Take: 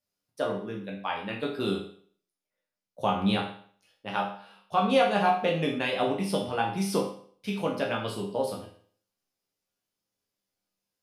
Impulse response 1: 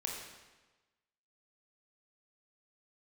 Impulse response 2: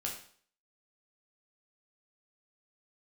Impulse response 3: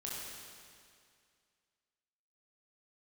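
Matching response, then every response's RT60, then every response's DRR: 2; 1.2, 0.50, 2.2 seconds; −1.0, −2.0, −5.5 decibels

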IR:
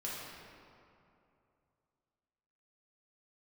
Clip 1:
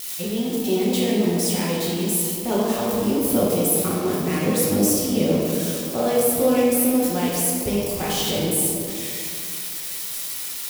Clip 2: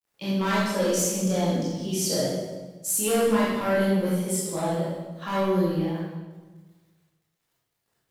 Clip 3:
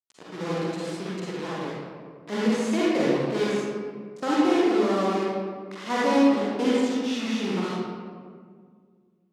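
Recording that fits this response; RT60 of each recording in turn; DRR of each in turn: 1; 2.7, 1.3, 1.9 seconds; −7.0, −9.0, −8.0 decibels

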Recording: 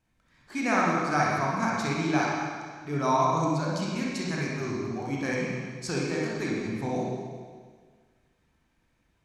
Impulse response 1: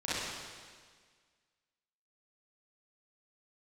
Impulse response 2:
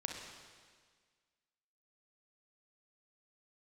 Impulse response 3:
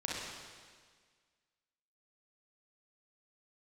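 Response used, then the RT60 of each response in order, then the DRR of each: 3; 1.7, 1.7, 1.7 seconds; −12.0, 1.0, −5.0 decibels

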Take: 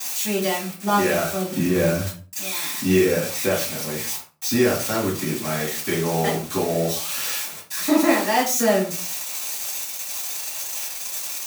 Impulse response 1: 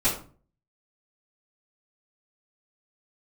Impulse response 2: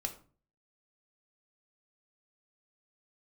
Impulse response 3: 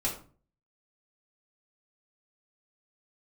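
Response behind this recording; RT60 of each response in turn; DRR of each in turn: 1; 0.40, 0.40, 0.40 seconds; −14.5, 3.5, −6.0 decibels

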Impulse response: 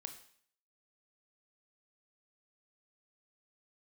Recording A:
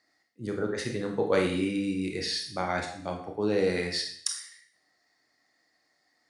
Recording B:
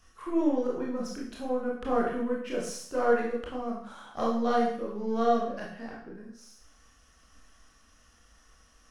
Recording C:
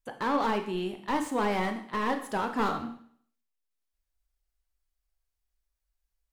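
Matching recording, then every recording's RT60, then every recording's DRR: C; 0.55, 0.55, 0.55 seconds; 1.5, −3.5, 6.0 decibels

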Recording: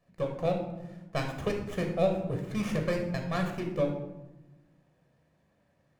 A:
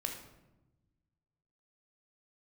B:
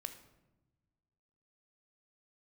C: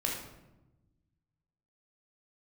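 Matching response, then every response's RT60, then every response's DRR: A; 1.0 s, non-exponential decay, 1.0 s; 2.5, 8.0, −1.5 decibels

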